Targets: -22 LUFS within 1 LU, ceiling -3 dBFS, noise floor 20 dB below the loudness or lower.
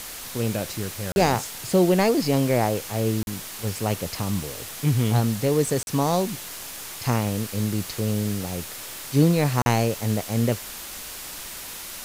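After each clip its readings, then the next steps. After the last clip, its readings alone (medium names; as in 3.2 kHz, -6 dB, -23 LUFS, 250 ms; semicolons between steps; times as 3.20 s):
dropouts 4; longest dropout 41 ms; noise floor -37 dBFS; noise floor target -45 dBFS; loudness -24.5 LUFS; peak level -6.0 dBFS; loudness target -22.0 LUFS
-> interpolate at 1.12/3.23/5.83/9.62 s, 41 ms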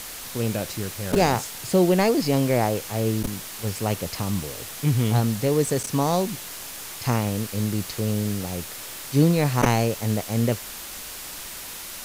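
dropouts 0; noise floor -37 dBFS; noise floor target -45 dBFS
-> noise reduction 8 dB, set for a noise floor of -37 dBFS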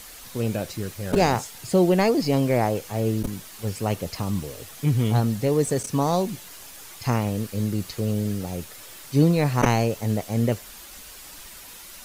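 noise floor -43 dBFS; noise floor target -44 dBFS
-> noise reduction 6 dB, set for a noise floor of -43 dBFS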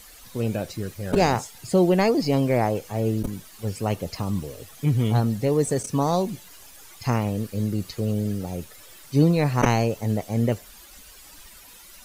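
noise floor -47 dBFS; loudness -24.5 LUFS; peak level -6.5 dBFS; loudness target -22.0 LUFS
-> trim +2.5 dB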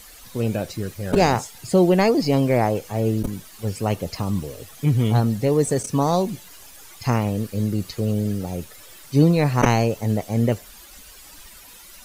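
loudness -22.0 LUFS; peak level -4.0 dBFS; noise floor -45 dBFS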